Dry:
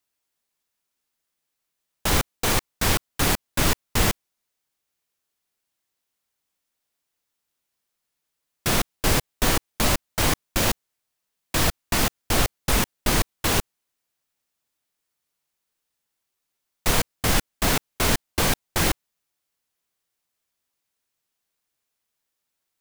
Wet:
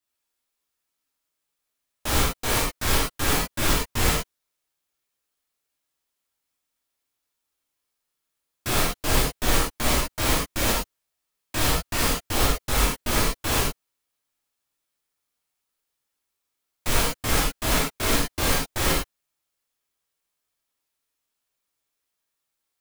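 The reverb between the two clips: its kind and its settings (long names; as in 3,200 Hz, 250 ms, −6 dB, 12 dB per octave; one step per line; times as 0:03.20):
reverb whose tail is shaped and stops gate 130 ms flat, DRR −7 dB
level −8 dB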